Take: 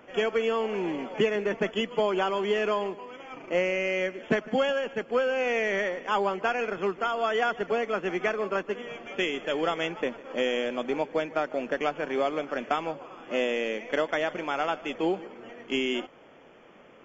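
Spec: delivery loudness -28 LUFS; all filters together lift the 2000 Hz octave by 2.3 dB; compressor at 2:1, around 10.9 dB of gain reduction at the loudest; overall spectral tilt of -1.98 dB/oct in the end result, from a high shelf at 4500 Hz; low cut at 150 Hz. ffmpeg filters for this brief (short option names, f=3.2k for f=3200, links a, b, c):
-af "highpass=150,equalizer=f=2k:t=o:g=4.5,highshelf=f=4.5k:g=-9,acompressor=threshold=-41dB:ratio=2,volume=9.5dB"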